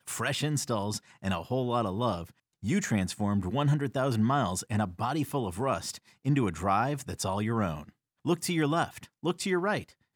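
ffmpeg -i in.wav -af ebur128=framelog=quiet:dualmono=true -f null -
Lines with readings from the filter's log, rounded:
Integrated loudness:
  I:         -27.2 LUFS
  Threshold: -37.3 LUFS
Loudness range:
  LRA:         1.7 LU
  Threshold: -47.1 LUFS
  LRA low:   -28.0 LUFS
  LRA high:  -26.4 LUFS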